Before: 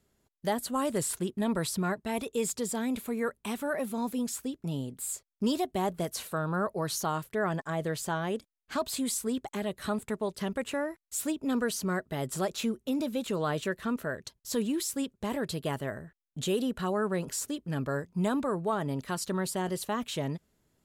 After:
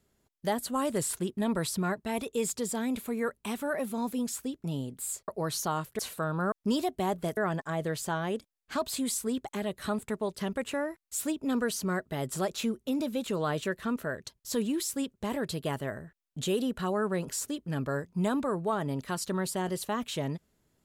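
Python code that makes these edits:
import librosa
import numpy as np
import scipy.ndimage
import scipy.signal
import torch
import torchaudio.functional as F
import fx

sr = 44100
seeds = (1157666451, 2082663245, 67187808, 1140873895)

y = fx.edit(x, sr, fx.swap(start_s=5.28, length_s=0.85, other_s=6.66, other_length_s=0.71), tone=tone)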